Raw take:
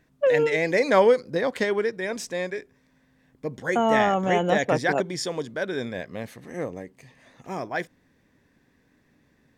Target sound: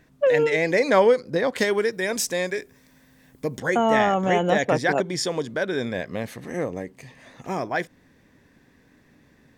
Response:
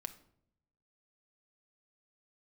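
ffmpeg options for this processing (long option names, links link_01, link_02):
-filter_complex "[0:a]asettb=1/sr,asplit=3[link_01][link_02][link_03];[link_01]atrim=end=1.584[link_04];[link_02]atrim=start=1.58:end=3.6,asetpts=PTS-STARTPTS,afade=type=in:duration=0.004:curve=qsin,afade=type=out:start_time=2.016:duration=0.004:curve=qsin,aemphasis=mode=production:type=50kf[link_05];[link_03]atrim=start=3.596[link_06];[link_04][link_05]acrossfade=duration=0.004:curve1=hsin:curve2=qsin[link_07];[link_07][link_06]acrossfade=duration=0.004:curve1=qsin:curve2=hsin,asplit=2[link_08][link_09];[link_09]acompressor=threshold=-32dB:ratio=6,volume=2.5dB[link_10];[link_08][link_10]amix=inputs=2:normalize=0,volume=-1dB"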